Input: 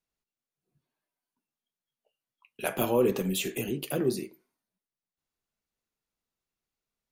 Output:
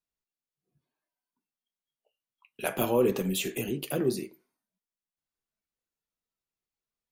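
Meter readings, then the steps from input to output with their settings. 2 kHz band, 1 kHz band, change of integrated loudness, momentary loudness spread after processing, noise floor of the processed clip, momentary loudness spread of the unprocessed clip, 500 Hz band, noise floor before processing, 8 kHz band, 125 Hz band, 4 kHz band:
0.0 dB, 0.0 dB, 0.0 dB, 11 LU, under -85 dBFS, 11 LU, 0.0 dB, under -85 dBFS, 0.0 dB, 0.0 dB, 0.0 dB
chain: spectral noise reduction 6 dB

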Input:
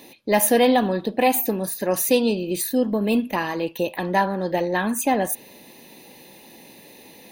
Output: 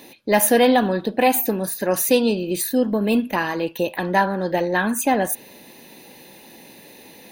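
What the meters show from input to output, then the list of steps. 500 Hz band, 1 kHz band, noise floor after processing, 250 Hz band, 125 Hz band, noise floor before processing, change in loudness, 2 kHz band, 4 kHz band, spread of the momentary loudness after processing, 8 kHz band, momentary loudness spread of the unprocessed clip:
+1.5 dB, +1.5 dB, -46 dBFS, +1.5 dB, +1.5 dB, -47 dBFS, +1.5 dB, +3.5 dB, +1.5 dB, 8 LU, +1.5 dB, 8 LU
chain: bell 1500 Hz +6.5 dB 0.26 oct; gain +1.5 dB

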